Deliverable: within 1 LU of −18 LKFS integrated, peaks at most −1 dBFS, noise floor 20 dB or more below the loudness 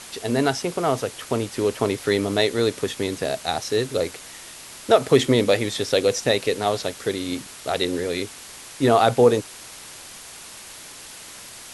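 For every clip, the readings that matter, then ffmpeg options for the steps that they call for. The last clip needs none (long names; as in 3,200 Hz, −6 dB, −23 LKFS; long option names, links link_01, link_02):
background noise floor −41 dBFS; target noise floor −42 dBFS; integrated loudness −22.0 LKFS; sample peak −2.5 dBFS; target loudness −18.0 LKFS
→ -af "afftdn=noise_reduction=6:noise_floor=-41"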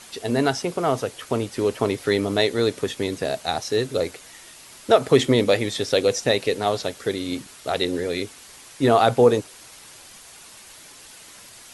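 background noise floor −45 dBFS; integrated loudness −22.5 LKFS; sample peak −2.5 dBFS; target loudness −18.0 LKFS
→ -af "volume=4.5dB,alimiter=limit=-1dB:level=0:latency=1"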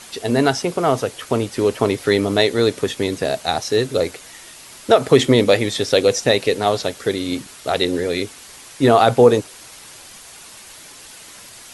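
integrated loudness −18.0 LKFS; sample peak −1.0 dBFS; background noise floor −41 dBFS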